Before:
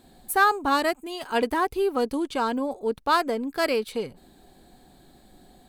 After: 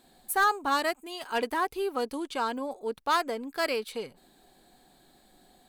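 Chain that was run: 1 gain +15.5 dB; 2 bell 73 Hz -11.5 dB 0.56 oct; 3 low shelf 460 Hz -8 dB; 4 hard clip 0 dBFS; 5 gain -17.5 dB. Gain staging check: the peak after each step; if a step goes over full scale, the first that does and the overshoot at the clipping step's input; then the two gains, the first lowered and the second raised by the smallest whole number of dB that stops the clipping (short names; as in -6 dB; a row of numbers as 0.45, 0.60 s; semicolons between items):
+7.0, +7.0, +7.0, 0.0, -17.5 dBFS; step 1, 7.0 dB; step 1 +8.5 dB, step 5 -10.5 dB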